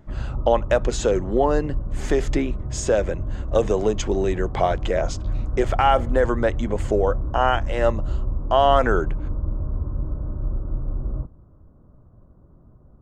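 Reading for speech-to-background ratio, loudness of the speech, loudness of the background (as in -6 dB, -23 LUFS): 7.5 dB, -22.5 LUFS, -30.0 LUFS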